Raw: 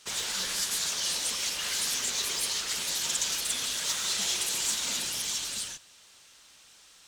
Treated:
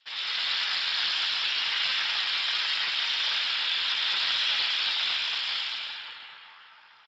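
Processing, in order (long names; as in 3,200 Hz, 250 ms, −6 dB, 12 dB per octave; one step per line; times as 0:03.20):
dead-zone distortion −57.5 dBFS
flanger 1.7 Hz, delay 8.7 ms, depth 9.3 ms, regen −56%
Chebyshev high-pass filter 850 Hz, order 6
on a send: tape delay 236 ms, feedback 90%, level −19.5 dB, low-pass 2,200 Hz
on the sum: comb and all-pass reverb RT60 4.4 s, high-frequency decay 0.45×, pre-delay 55 ms, DRR −7 dB
downsampling to 11,025 Hz
level +7.5 dB
Speex 13 kbit/s 16,000 Hz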